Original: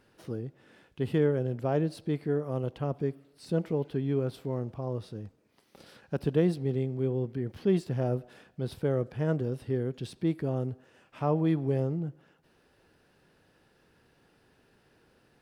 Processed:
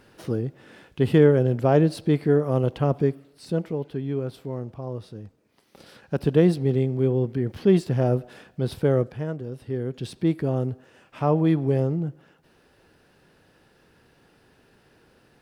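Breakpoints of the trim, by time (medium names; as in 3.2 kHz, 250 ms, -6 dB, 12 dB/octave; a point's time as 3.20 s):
2.99 s +9.5 dB
3.75 s +1 dB
5.23 s +1 dB
6.48 s +7.5 dB
9.00 s +7.5 dB
9.35 s -4 dB
10.11 s +6 dB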